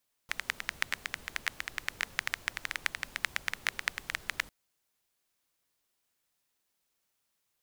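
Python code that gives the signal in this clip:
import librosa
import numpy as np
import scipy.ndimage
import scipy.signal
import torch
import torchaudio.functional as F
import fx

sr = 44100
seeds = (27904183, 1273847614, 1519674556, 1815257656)

y = fx.rain(sr, seeds[0], length_s=4.2, drops_per_s=11.0, hz=1900.0, bed_db=-15)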